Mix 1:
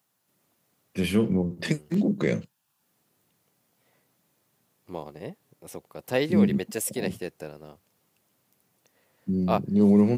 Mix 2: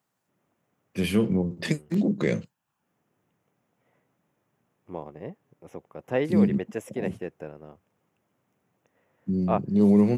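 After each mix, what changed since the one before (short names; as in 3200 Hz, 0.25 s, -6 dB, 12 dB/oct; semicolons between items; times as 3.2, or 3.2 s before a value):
second voice: add running mean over 10 samples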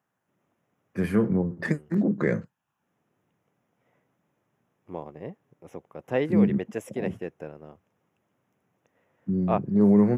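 first voice: add resonant high shelf 2200 Hz -10 dB, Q 3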